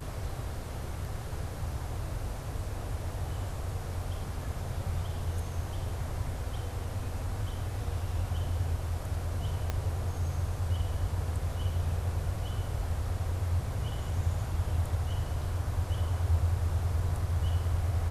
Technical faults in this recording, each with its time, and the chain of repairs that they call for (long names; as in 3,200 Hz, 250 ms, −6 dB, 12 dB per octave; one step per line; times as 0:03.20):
0:09.70: click −17 dBFS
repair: click removal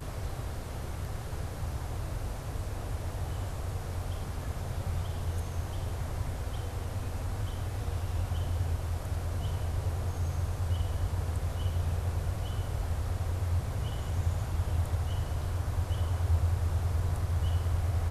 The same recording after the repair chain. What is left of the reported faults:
0:09.70: click